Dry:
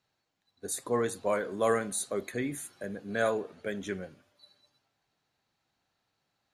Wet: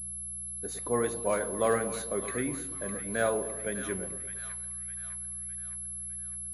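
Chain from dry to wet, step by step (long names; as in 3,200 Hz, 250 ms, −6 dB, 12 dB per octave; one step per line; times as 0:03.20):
hum with harmonics 60 Hz, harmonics 3, −50 dBFS −2 dB per octave
echo with a time of its own for lows and highs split 1,000 Hz, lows 113 ms, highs 607 ms, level −10 dB
switching amplifier with a slow clock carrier 11,000 Hz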